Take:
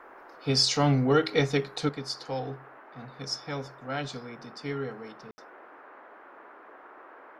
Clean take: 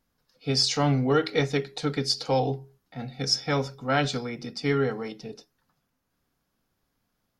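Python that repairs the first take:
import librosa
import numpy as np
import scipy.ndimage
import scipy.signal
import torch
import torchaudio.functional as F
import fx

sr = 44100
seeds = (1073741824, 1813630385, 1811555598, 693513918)

y = fx.fix_ambience(x, sr, seeds[0], print_start_s=5.95, print_end_s=6.45, start_s=5.31, end_s=5.38)
y = fx.noise_reduce(y, sr, print_start_s=5.95, print_end_s=6.45, reduce_db=26.0)
y = fx.fix_level(y, sr, at_s=1.89, step_db=9.0)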